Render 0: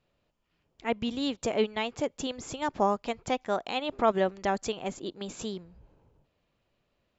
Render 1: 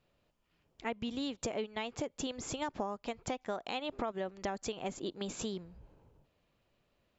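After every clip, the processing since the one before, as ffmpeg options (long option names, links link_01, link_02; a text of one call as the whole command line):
ffmpeg -i in.wav -af "acompressor=threshold=-33dB:ratio=12" out.wav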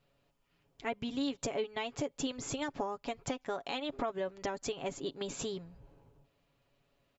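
ffmpeg -i in.wav -af "aecho=1:1:7.2:0.56" out.wav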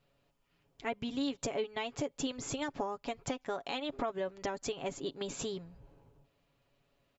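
ffmpeg -i in.wav -af anull out.wav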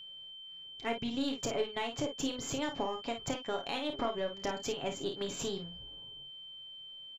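ffmpeg -i in.wav -af "aeval=exprs='0.0841*(cos(1*acos(clip(val(0)/0.0841,-1,1)))-cos(1*PI/2))+0.00237*(cos(8*acos(clip(val(0)/0.0841,-1,1)))-cos(8*PI/2))':channel_layout=same,aecho=1:1:30|52:0.376|0.398,aeval=exprs='val(0)+0.00501*sin(2*PI*3100*n/s)':channel_layout=same" out.wav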